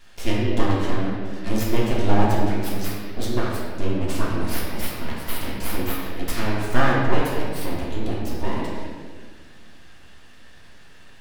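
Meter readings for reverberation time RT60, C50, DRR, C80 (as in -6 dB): 1.7 s, -0.5 dB, -6.0 dB, 1.0 dB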